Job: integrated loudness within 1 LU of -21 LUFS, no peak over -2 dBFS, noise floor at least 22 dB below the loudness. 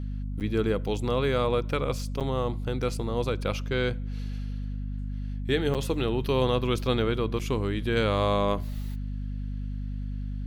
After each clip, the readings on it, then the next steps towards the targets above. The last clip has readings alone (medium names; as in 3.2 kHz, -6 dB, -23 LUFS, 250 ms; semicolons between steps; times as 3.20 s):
dropouts 4; longest dropout 7.6 ms; hum 50 Hz; highest harmonic 250 Hz; hum level -30 dBFS; loudness -29.0 LUFS; peak level -12.0 dBFS; loudness target -21.0 LUFS
-> interpolate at 0.40/2.20/5.74/7.39 s, 7.6 ms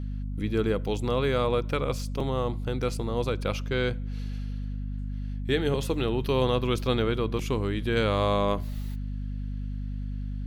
dropouts 0; hum 50 Hz; highest harmonic 250 Hz; hum level -30 dBFS
-> de-hum 50 Hz, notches 5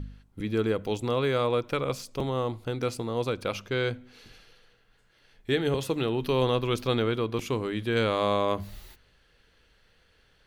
hum not found; loudness -28.5 LUFS; peak level -13.0 dBFS; loudness target -21.0 LUFS
-> trim +7.5 dB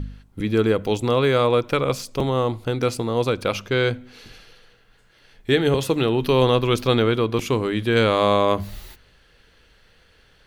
loudness -21.0 LUFS; peak level -5.5 dBFS; noise floor -57 dBFS